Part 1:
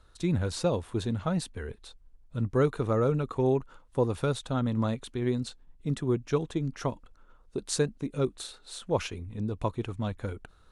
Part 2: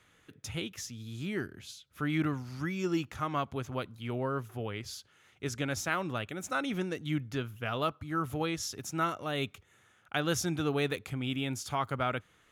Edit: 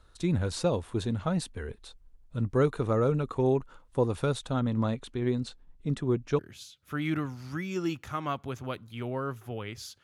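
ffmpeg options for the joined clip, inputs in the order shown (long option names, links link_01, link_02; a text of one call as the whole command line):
ffmpeg -i cue0.wav -i cue1.wav -filter_complex "[0:a]asettb=1/sr,asplit=3[link_01][link_02][link_03];[link_01]atrim=end=4.604[link_04];[link_02]atrim=start=4.6:end=6.39,asetpts=PTS-STARTPTS,afade=type=in:duration=0.004:curve=qsin,afade=type=out:start_time=1.786:duration=0.004:curve=qsin,highshelf=frequency=8600:gain=-10[link_05];[link_03]atrim=start=6.386[link_06];[link_04][link_05]acrossfade=duration=0.004:curve1=hsin:curve2=qsin[link_07];[link_07][link_06]acrossfade=duration=0.004:curve1=qsin:curve2=hsin,apad=whole_dur=10.03,atrim=end=10.03,atrim=end=6.392[link_08];[1:a]atrim=start=1.468:end=5.11[link_09];[link_08][link_09]acrossfade=duration=0.004:curve1=hsin:curve2=hsin" out.wav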